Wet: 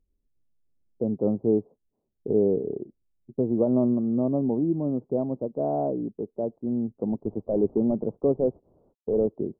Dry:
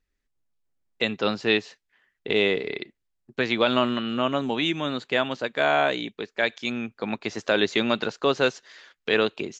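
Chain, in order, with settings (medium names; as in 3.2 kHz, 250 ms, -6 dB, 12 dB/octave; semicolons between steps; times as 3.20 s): 7.04–9.27 s: CVSD coder 32 kbps; Gaussian low-pass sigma 16 samples; trim +5.5 dB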